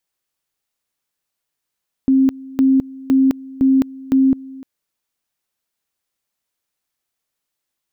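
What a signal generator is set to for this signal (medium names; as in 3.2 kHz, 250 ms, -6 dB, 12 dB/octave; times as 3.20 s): two-level tone 266 Hz -9.5 dBFS, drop 21.5 dB, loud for 0.21 s, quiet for 0.30 s, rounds 5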